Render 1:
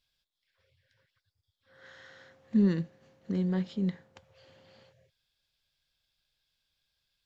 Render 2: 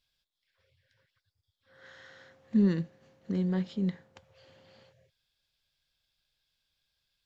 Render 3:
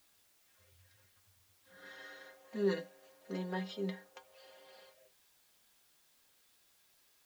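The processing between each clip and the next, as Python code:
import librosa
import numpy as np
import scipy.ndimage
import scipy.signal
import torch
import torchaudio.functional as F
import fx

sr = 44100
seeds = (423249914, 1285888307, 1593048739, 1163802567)

y1 = x
y2 = fx.filter_sweep_highpass(y1, sr, from_hz=64.0, to_hz=530.0, start_s=1.17, end_s=2.4, q=1.3)
y2 = fx.stiff_resonator(y2, sr, f0_hz=93.0, decay_s=0.25, stiffness=0.008)
y2 = fx.dmg_noise_colour(y2, sr, seeds[0], colour='white', level_db=-80.0)
y2 = F.gain(torch.from_numpy(y2), 9.5).numpy()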